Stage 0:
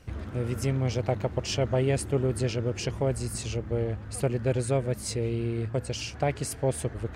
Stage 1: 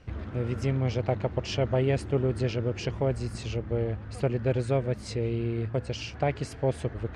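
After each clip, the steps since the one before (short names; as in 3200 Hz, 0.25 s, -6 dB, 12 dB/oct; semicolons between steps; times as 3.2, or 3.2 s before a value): LPF 4300 Hz 12 dB/oct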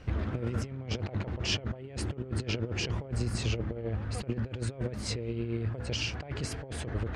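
negative-ratio compressor -32 dBFS, ratio -0.5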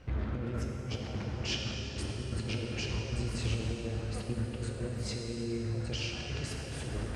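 plate-style reverb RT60 3.8 s, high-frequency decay 0.9×, DRR 0 dB; gain -5 dB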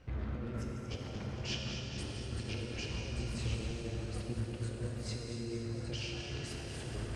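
regenerating reverse delay 0.116 s, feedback 82%, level -9.5 dB; gain -5 dB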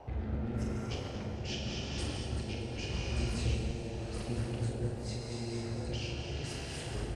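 doubler 42 ms -5.5 dB; rotary speaker horn 0.85 Hz; band noise 340–870 Hz -56 dBFS; gain +3.5 dB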